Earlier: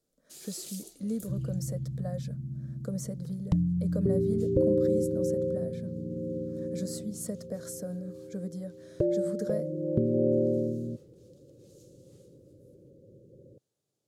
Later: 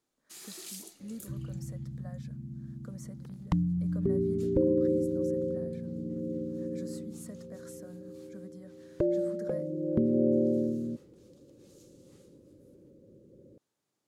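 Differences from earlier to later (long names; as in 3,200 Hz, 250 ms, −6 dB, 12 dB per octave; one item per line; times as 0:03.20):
speech −11.0 dB
master: add octave-band graphic EQ 125/250/500/1,000/2,000 Hz −7/+5/−6/+9/+7 dB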